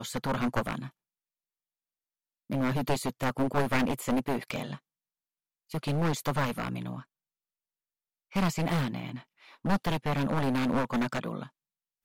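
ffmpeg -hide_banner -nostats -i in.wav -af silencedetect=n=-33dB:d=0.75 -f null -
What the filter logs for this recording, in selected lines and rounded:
silence_start: 0.87
silence_end: 2.50 | silence_duration: 1.63
silence_start: 4.74
silence_end: 5.74 | silence_duration: 1.00
silence_start: 6.99
silence_end: 8.36 | silence_duration: 1.37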